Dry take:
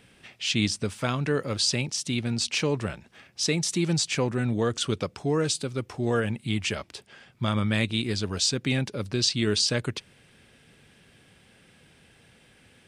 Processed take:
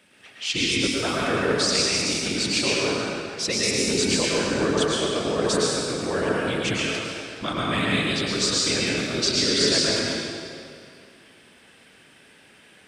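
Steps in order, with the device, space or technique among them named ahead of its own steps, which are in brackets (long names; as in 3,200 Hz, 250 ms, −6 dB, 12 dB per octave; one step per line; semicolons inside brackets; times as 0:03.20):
whispering ghost (random phases in short frames; high-pass filter 300 Hz 6 dB per octave; convolution reverb RT60 2.5 s, pre-delay 100 ms, DRR −5.5 dB)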